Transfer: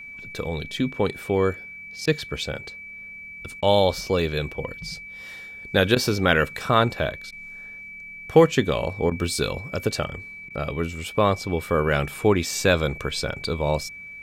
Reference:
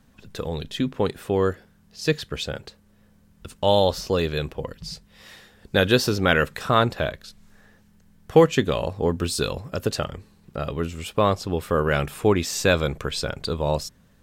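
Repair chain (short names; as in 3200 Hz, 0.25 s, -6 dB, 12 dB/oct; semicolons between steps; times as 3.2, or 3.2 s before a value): notch 2300 Hz, Q 30; interpolate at 2.06/3.61/5.95/7.31/9.1/10.49, 12 ms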